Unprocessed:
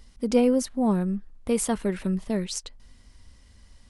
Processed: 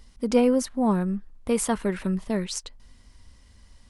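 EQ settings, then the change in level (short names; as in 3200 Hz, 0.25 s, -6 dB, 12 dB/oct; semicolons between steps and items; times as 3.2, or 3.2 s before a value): bell 1000 Hz +2.5 dB 0.33 oct; dynamic EQ 1400 Hz, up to +4 dB, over -44 dBFS, Q 0.93; 0.0 dB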